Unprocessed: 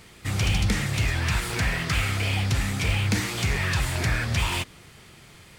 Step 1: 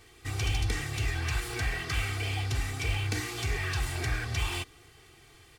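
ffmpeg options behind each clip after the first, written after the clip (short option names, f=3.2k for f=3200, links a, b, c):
-af "aecho=1:1:2.6:0.81,volume=-8.5dB"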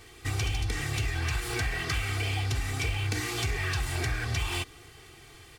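-af "acompressor=threshold=-31dB:ratio=6,volume=5dB"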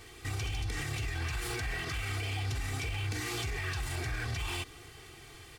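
-af "alimiter=level_in=3dB:limit=-24dB:level=0:latency=1:release=47,volume=-3dB"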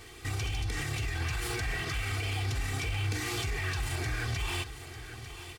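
-af "aecho=1:1:897:0.251,volume=2dB"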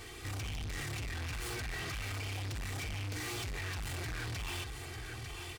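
-af "asoftclip=type=tanh:threshold=-39dB,volume=2dB"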